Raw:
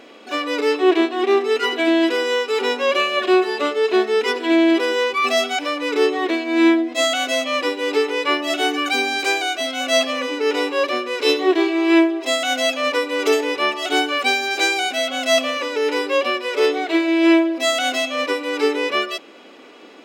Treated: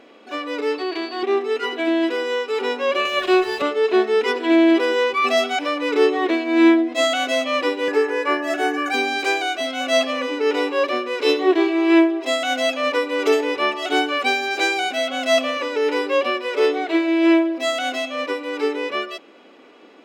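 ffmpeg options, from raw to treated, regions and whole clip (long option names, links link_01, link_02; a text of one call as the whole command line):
ffmpeg -i in.wav -filter_complex "[0:a]asettb=1/sr,asplit=3[link_01][link_02][link_03];[link_01]atrim=end=0.784[link_04];[link_02]atrim=start=0.78:end=1.23,asetpts=PTS-STARTPTS,afade=type=in:duration=0.004:curve=qsin,afade=type=out:start_time=0.446:duration=0.004:curve=qsin,tiltshelf=frequency=700:gain=-4,acompressor=threshold=-18dB:ratio=4:attack=3.2:release=140:knee=1:detection=peak,aeval=exprs='val(0)+0.0355*sin(2*PI*4500*n/s)':channel_layout=same[link_05];[link_03]atrim=start=1.226[link_06];[link_04][link_05]acrossfade=duration=0.004:curve1=hsin:curve2=qsin[link_07];[link_07][link_06]acrossfade=duration=0.004:curve1=qsin:curve2=hsin,asettb=1/sr,asplit=3[link_08][link_09][link_10];[link_08]atrim=end=3.054[link_11];[link_09]atrim=start=3.05:end=3.62,asetpts=PTS-STARTPTS,afade=type=in:duration=0.004:curve=qsin,afade=type=out:start_time=0.566:duration=0.004:curve=qsin,highpass=frequency=230:width=0.5412,highpass=frequency=230:width=1.3066,highshelf=frequency=2400:gain=7.5,aeval=exprs='sgn(val(0))*max(abs(val(0))-0.0158,0)':channel_layout=same[link_12];[link_10]atrim=start=3.616[link_13];[link_11][link_12]acrossfade=duration=0.004:curve1=hsin:curve2=qsin[link_14];[link_14][link_13]acrossfade=duration=0.004:curve1=qsin:curve2=hsin,asettb=1/sr,asplit=3[link_15][link_16][link_17];[link_15]atrim=end=7.884[link_18];[link_16]atrim=start=7.88:end=8.94,asetpts=PTS-STARTPTS,afade=type=in:duration=0.004:curve=qsin,afade=type=out:start_time=1.056:duration=0.004:curve=qsin,highpass=240,equalizer=frequency=3500:width=1.8:gain=-11,aeval=exprs='val(0)+0.0282*sin(2*PI*1700*n/s)':channel_layout=same[link_19];[link_17]atrim=start=8.936[link_20];[link_18][link_19]acrossfade=duration=0.004:curve1=hsin:curve2=qsin[link_21];[link_21][link_20]acrossfade=duration=0.004:curve1=qsin:curve2=hsin,highshelf=frequency=3600:gain=-7.5,dynaudnorm=framelen=390:gausssize=17:maxgain=11.5dB,volume=-3.5dB" out.wav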